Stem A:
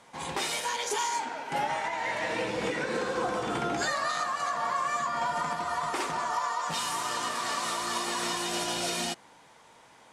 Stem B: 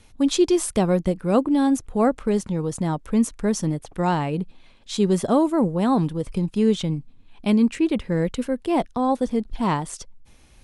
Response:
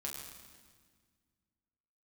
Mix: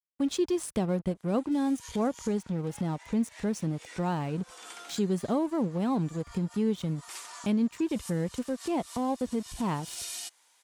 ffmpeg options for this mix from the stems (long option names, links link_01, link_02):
-filter_complex "[0:a]highpass=250,aderivative,adelay=1150,volume=0.5dB[link_01];[1:a]aeval=exprs='sgn(val(0))*max(abs(val(0))-0.0126,0)':channel_layout=same,volume=-2.5dB,asplit=2[link_02][link_03];[link_03]apad=whole_len=497364[link_04];[link_01][link_04]sidechaincompress=threshold=-36dB:ratio=4:attack=6.6:release=113[link_05];[link_05][link_02]amix=inputs=2:normalize=0,highpass=59,lowshelf=frequency=210:gain=6,acompressor=threshold=-38dB:ratio=1.5"